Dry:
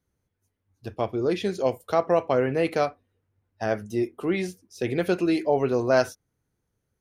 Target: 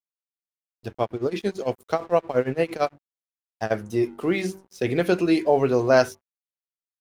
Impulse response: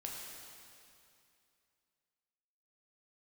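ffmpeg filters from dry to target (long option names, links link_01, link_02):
-filter_complex "[0:a]bandreject=frequency=47.99:width_type=h:width=4,bandreject=frequency=95.98:width_type=h:width=4,bandreject=frequency=143.97:width_type=h:width=4,bandreject=frequency=191.96:width_type=h:width=4,bandreject=frequency=239.95:width_type=h:width=4,bandreject=frequency=287.94:width_type=h:width=4,bandreject=frequency=335.93:width_type=h:width=4,bandreject=frequency=383.92:width_type=h:width=4,asplit=3[link_01][link_02][link_03];[link_01]afade=type=out:start_time=0.88:duration=0.02[link_04];[link_02]tremolo=f=8.8:d=0.88,afade=type=in:start_time=0.88:duration=0.02,afade=type=out:start_time=3.7:duration=0.02[link_05];[link_03]afade=type=in:start_time=3.7:duration=0.02[link_06];[link_04][link_05][link_06]amix=inputs=3:normalize=0,aeval=exprs='sgn(val(0))*max(abs(val(0))-0.00251,0)':channel_layout=same,volume=3.5dB"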